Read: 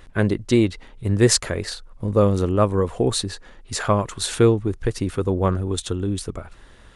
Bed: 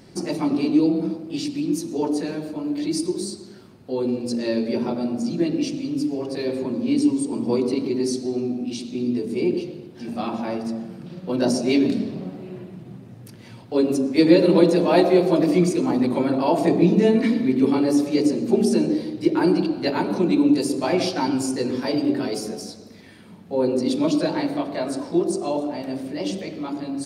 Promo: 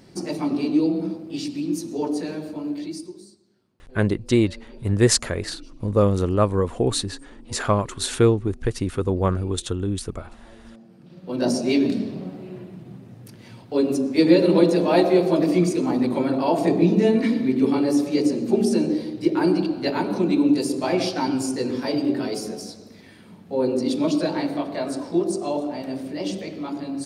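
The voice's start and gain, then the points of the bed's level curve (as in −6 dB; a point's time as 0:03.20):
3.80 s, −1.0 dB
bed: 0:02.70 −2 dB
0:03.41 −22.5 dB
0:10.54 −22.5 dB
0:11.46 −1 dB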